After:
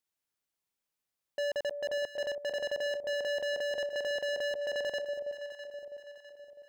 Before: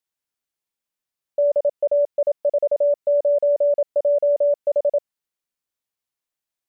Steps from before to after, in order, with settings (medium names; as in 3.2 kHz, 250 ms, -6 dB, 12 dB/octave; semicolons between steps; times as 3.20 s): hard clipper -29.5 dBFS, distortion -8 dB; echo whose repeats swap between lows and highs 327 ms, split 800 Hz, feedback 65%, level -7 dB; trim -1.5 dB